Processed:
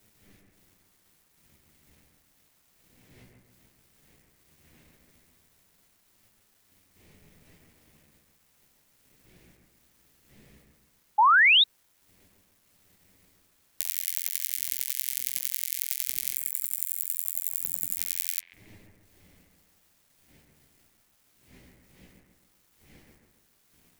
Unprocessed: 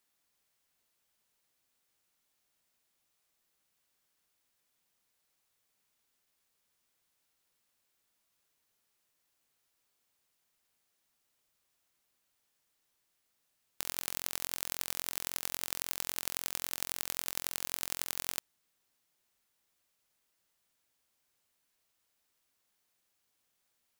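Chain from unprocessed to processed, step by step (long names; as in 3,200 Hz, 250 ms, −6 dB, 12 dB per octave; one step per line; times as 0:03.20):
wind on the microphone 250 Hz −44 dBFS
flanger 0.16 Hz, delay 9.6 ms, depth 6.8 ms, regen +19%
in parallel at +1.5 dB: downward compressor 6 to 1, threshold −49 dBFS, peak gain reduction 18 dB
on the sum: high shelf with overshoot 1,600 Hz +7.5 dB, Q 3
gain on a spectral selection 0:16.36–0:17.98, 310–7,000 Hz −13 dB
first-order pre-emphasis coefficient 0.9
bit reduction 10 bits
on a send: bucket-brigade delay 138 ms, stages 2,048, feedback 48%, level −4 dB
on the sum: sound drawn into the spectrogram rise, 0:11.18–0:11.64, 810–3,900 Hz −17 dBFS
level −1 dB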